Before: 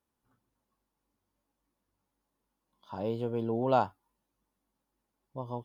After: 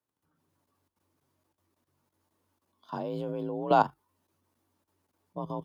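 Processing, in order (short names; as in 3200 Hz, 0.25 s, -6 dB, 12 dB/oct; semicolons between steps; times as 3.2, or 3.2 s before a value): level quantiser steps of 14 dB; frequency shift +43 Hz; gain +8 dB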